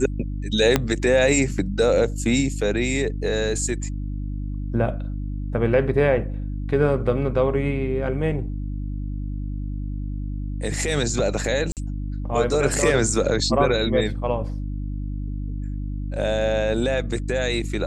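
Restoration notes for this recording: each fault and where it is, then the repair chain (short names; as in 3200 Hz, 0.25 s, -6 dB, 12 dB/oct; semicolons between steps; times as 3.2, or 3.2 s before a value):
hum 50 Hz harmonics 6 -28 dBFS
0.76 pop -3 dBFS
11.72–11.77 gap 48 ms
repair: de-click; de-hum 50 Hz, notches 6; interpolate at 11.72, 48 ms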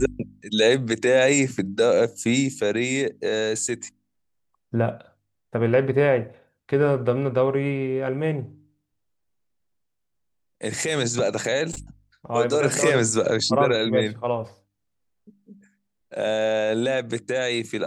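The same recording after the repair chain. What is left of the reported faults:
0.76 pop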